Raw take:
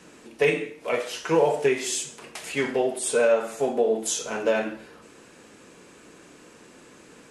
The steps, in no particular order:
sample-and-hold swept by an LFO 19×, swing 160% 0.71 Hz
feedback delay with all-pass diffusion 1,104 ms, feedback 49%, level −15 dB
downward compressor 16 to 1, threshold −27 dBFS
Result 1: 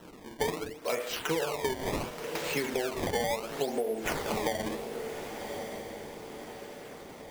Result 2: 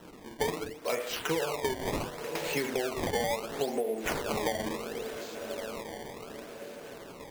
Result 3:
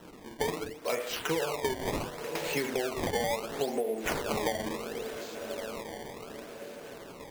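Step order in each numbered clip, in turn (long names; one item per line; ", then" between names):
sample-and-hold swept by an LFO, then feedback delay with all-pass diffusion, then downward compressor
feedback delay with all-pass diffusion, then sample-and-hold swept by an LFO, then downward compressor
feedback delay with all-pass diffusion, then downward compressor, then sample-and-hold swept by an LFO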